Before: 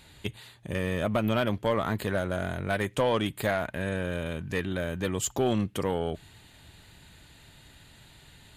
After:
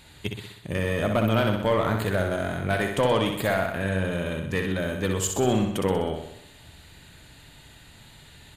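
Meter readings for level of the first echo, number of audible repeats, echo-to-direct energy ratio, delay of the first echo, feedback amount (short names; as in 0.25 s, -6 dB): -5.5 dB, 7, -4.0 dB, 63 ms, 57%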